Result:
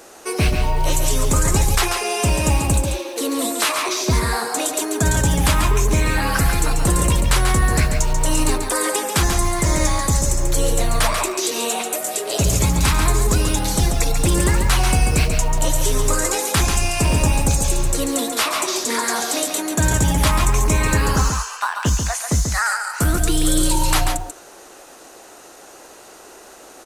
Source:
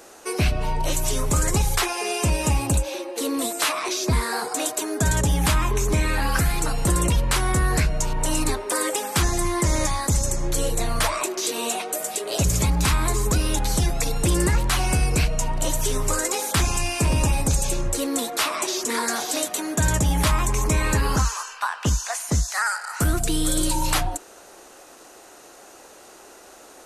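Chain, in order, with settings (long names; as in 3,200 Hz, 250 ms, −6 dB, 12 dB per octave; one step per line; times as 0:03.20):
floating-point word with a short mantissa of 4 bits
single-tap delay 139 ms −6 dB
level +3 dB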